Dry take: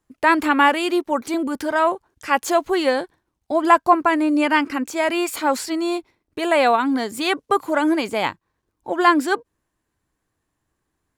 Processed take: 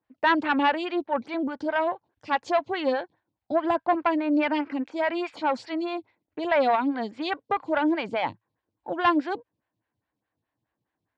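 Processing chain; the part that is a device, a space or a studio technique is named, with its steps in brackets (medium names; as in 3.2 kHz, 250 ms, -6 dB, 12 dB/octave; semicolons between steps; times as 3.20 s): vibe pedal into a guitar amplifier (lamp-driven phase shifter 4.8 Hz; valve stage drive 9 dB, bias 0.45; cabinet simulation 93–4300 Hz, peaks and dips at 110 Hz +8 dB, 390 Hz -8 dB, 1.2 kHz -6 dB)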